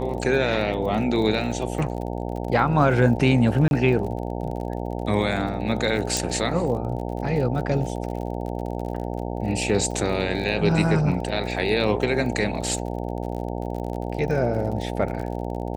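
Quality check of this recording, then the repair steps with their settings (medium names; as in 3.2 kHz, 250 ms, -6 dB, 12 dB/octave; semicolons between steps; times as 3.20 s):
buzz 60 Hz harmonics 15 -29 dBFS
crackle 39 per s -32 dBFS
3.68–3.71 s: dropout 31 ms
6.17 s: pop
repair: de-click; de-hum 60 Hz, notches 15; interpolate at 3.68 s, 31 ms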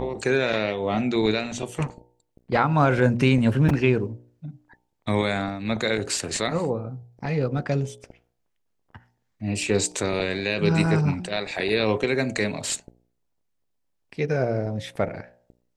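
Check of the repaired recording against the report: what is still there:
nothing left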